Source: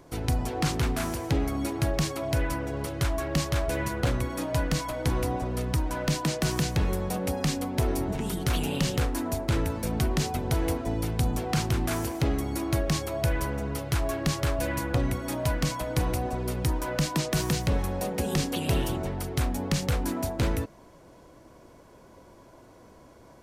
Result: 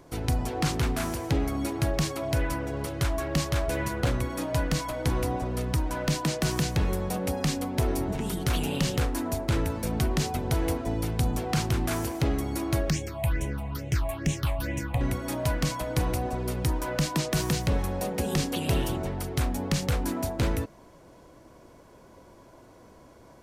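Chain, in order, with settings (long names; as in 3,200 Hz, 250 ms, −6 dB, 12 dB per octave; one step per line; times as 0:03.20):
0:12.90–0:15.01: all-pass phaser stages 6, 2.3 Hz, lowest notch 370–1,300 Hz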